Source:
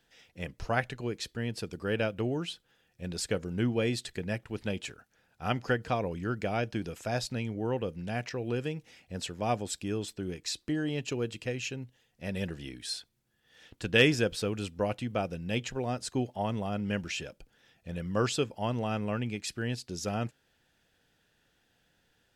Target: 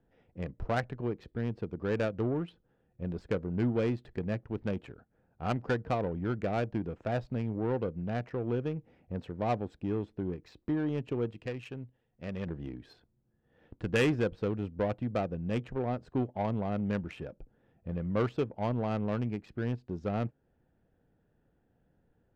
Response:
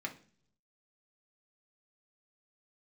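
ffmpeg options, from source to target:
-filter_complex "[0:a]asplit=2[link_01][link_02];[link_02]acompressor=threshold=-41dB:ratio=6,volume=-2dB[link_03];[link_01][link_03]amix=inputs=2:normalize=0,asoftclip=type=tanh:threshold=-19dB,adynamicsmooth=sensitivity=1.5:basefreq=690,asettb=1/sr,asplit=3[link_04][link_05][link_06];[link_04]atrim=end=11.314[link_07];[link_05]atrim=start=11.31:end=12.47,asetpts=PTS-STARTPTS,afade=type=in:duration=0.004:curve=qsin,afade=type=out:start_time=1.156:duration=0.004:curve=qsin,tiltshelf=frequency=1400:gain=-4.5[link_08];[link_06]atrim=start=12.466[link_09];[link_07][link_08]acrossfade=duration=0.004:curve1=hsin:curve2=qsin[link_10];[link_10][link_09]acrossfade=duration=0.004:curve1=qsin:curve2=hsin"

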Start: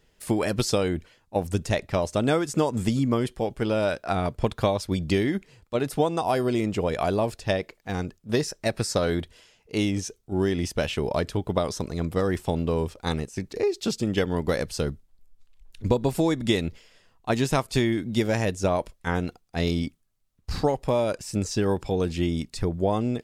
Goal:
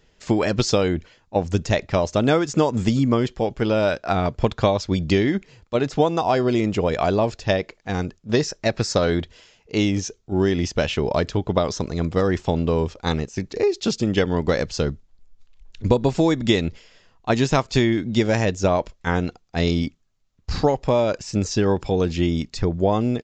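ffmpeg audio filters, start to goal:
ffmpeg -i in.wav -af "aresample=16000,aresample=44100,volume=4.5dB" out.wav

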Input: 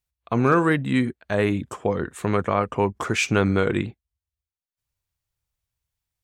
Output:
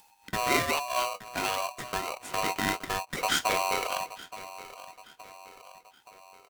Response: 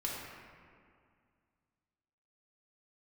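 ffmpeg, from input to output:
-filter_complex "[0:a]flanger=delay=1.4:depth=9.5:regen=51:speed=1.4:shape=sinusoidal,asetrate=42336,aresample=44100,acrossover=split=210|860|2700[link_01][link_02][link_03][link_04];[link_02]acompressor=threshold=-39dB:ratio=6[link_05];[link_01][link_05][link_03][link_04]amix=inputs=4:normalize=0,asplit=2[link_06][link_07];[link_07]adelay=873,lowpass=frequency=2000:poles=1,volume=-15dB,asplit=2[link_08][link_09];[link_09]adelay=873,lowpass=frequency=2000:poles=1,volume=0.29,asplit=2[link_10][link_11];[link_11]adelay=873,lowpass=frequency=2000:poles=1,volume=0.29[link_12];[link_06][link_08][link_10][link_12]amix=inputs=4:normalize=0,acompressor=mode=upward:threshold=-40dB:ratio=2.5,aeval=exprs='val(0)*sgn(sin(2*PI*860*n/s))':channel_layout=same"

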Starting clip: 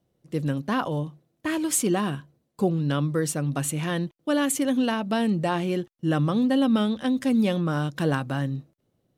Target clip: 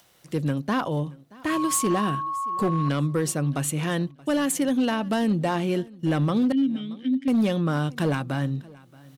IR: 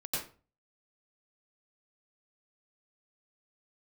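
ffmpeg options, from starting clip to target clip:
-filter_complex "[0:a]acrossover=split=930[link_01][link_02];[link_02]acompressor=mode=upward:threshold=-45dB:ratio=2.5[link_03];[link_01][link_03]amix=inputs=2:normalize=0,asettb=1/sr,asplit=3[link_04][link_05][link_06];[link_04]atrim=end=1.504[link_07];[link_05]atrim=start=1.5:end=2.89,asetpts=PTS-STARTPTS,afade=type=in:duration=0.004:curve=qsin,afade=type=out:start_time=1.386:duration=0.004:curve=qsin,aeval=exprs='val(0)+0.0398*sin(2*PI*1100*n/s)':channel_layout=same[link_08];[link_06]atrim=start=2.886[link_09];[link_07][link_08]acrossfade=duration=0.004:curve1=hsin:curve2=qsin[link_10];[link_10][link_09]acrossfade=duration=0.004:curve1=qsin:curve2=hsin,asettb=1/sr,asplit=3[link_11][link_12][link_13];[link_11]atrim=end=6.524[link_14];[link_12]atrim=start=6.52:end=7.28,asetpts=PTS-STARTPTS,afade=type=in:duration=0.004:curve=qsin,afade=type=out:start_time=0.756:duration=0.004:curve=qsin,asplit=3[link_15][link_16][link_17];[link_15]bandpass=frequency=270:width_type=q:width=8,volume=0dB[link_18];[link_16]bandpass=frequency=2290:width_type=q:width=8,volume=-6dB[link_19];[link_17]bandpass=frequency=3010:width_type=q:width=8,volume=-9dB[link_20];[link_18][link_19][link_20]amix=inputs=3:normalize=0[link_21];[link_13]atrim=start=7.276[link_22];[link_14][link_21]acrossfade=duration=0.004:curve1=hsin:curve2=qsin[link_23];[link_23][link_22]acrossfade=duration=0.004:curve1=qsin:curve2=hsin,asplit=2[link_24][link_25];[link_25]alimiter=limit=-21.5dB:level=0:latency=1:release=343,volume=-2.5dB[link_26];[link_24][link_26]amix=inputs=2:normalize=0,volume=15dB,asoftclip=hard,volume=-15dB,aecho=1:1:627|1254:0.0708|0.0135,volume=-2dB"

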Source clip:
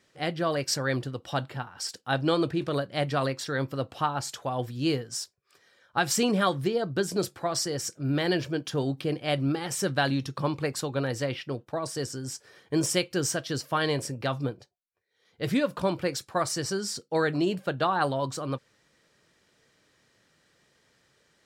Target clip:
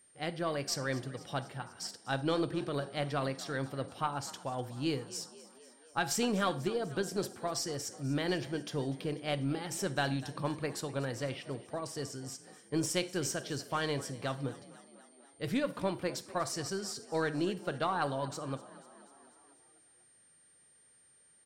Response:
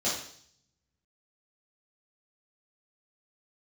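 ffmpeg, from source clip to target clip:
-filter_complex "[0:a]asplit=7[link_01][link_02][link_03][link_04][link_05][link_06][link_07];[link_02]adelay=246,afreqshift=37,volume=-18.5dB[link_08];[link_03]adelay=492,afreqshift=74,volume=-22.4dB[link_09];[link_04]adelay=738,afreqshift=111,volume=-26.3dB[link_10];[link_05]adelay=984,afreqshift=148,volume=-30.1dB[link_11];[link_06]adelay=1230,afreqshift=185,volume=-34dB[link_12];[link_07]adelay=1476,afreqshift=222,volume=-37.9dB[link_13];[link_01][link_08][link_09][link_10][link_11][link_12][link_13]amix=inputs=7:normalize=0,aeval=exprs='0.282*(cos(1*acos(clip(val(0)/0.282,-1,1)))-cos(1*PI/2))+0.0316*(cos(2*acos(clip(val(0)/0.282,-1,1)))-cos(2*PI/2))+0.00316*(cos(7*acos(clip(val(0)/0.282,-1,1)))-cos(7*PI/2))':channel_layout=same,aeval=exprs='val(0)+0.00178*sin(2*PI*9000*n/s)':channel_layout=same,asplit=2[link_14][link_15];[1:a]atrim=start_sample=2205,asetrate=61740,aresample=44100,adelay=38[link_16];[link_15][link_16]afir=irnorm=-1:irlink=0,volume=-22dB[link_17];[link_14][link_17]amix=inputs=2:normalize=0,volume=-6.5dB"

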